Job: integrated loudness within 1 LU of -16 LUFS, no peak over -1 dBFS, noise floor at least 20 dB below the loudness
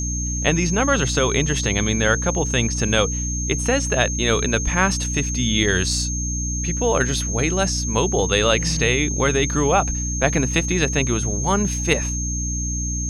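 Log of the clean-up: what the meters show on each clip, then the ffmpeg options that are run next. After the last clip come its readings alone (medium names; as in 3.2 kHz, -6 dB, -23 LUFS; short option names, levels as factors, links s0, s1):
hum 60 Hz; highest harmonic 300 Hz; hum level -23 dBFS; steady tone 6.4 kHz; tone level -26 dBFS; loudness -20.0 LUFS; peak level -2.0 dBFS; loudness target -16.0 LUFS
-> -af "bandreject=f=60:t=h:w=4,bandreject=f=120:t=h:w=4,bandreject=f=180:t=h:w=4,bandreject=f=240:t=h:w=4,bandreject=f=300:t=h:w=4"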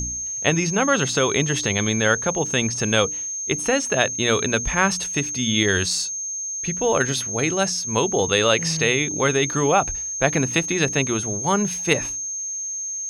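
hum not found; steady tone 6.4 kHz; tone level -26 dBFS
-> -af "bandreject=f=6400:w=30"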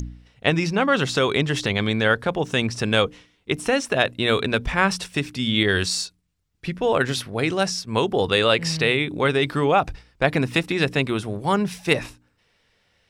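steady tone not found; loudness -22.0 LUFS; peak level -2.5 dBFS; loudness target -16.0 LUFS
-> -af "volume=2,alimiter=limit=0.891:level=0:latency=1"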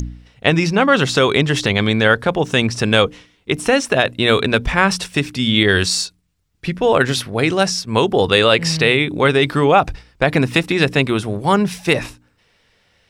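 loudness -16.0 LUFS; peak level -1.0 dBFS; noise floor -60 dBFS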